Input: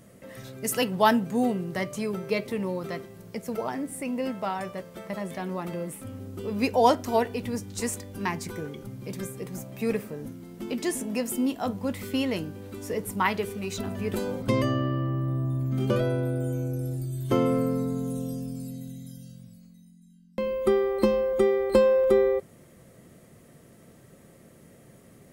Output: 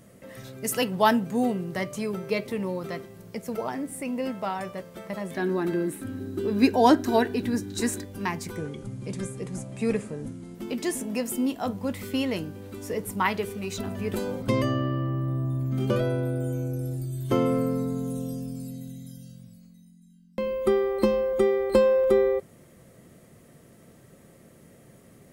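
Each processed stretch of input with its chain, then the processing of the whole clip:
5.35–8.05 bell 500 Hz -8.5 dB 0.37 oct + small resonant body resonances 340/1600/3900 Hz, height 14 dB, ringing for 25 ms
8.56–10.55 careless resampling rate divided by 2×, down none, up filtered + low shelf 200 Hz +5 dB
whole clip: dry

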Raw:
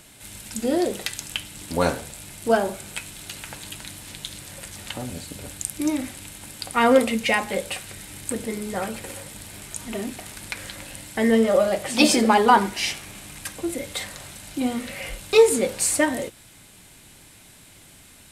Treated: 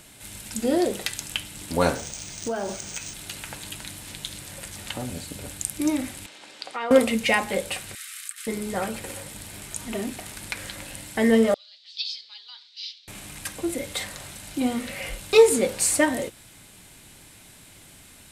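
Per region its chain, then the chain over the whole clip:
1.95–3.14 bell 8300 Hz +12.5 dB 0.35 oct + compressor, threshold -24 dBFS + decimation joined by straight lines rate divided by 3×
6.26–6.91 Chebyshev band-pass 430–4600 Hz + compressor 3:1, threshold -29 dBFS
7.95–8.47 negative-ratio compressor -30 dBFS, ratio -0.5 + brick-wall FIR high-pass 1100 Hz
11.54–13.08 Butterworth band-pass 4200 Hz, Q 3 + air absorption 100 m
whole clip: dry

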